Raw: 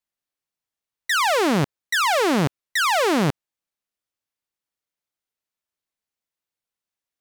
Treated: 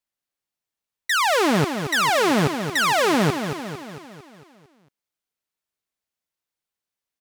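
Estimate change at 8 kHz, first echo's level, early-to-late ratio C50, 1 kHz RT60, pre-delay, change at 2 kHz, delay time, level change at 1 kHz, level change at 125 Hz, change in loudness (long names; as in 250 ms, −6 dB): +1.0 dB, −8.5 dB, no reverb audible, no reverb audible, no reverb audible, +1.0 dB, 226 ms, +0.5 dB, +1.0 dB, +0.5 dB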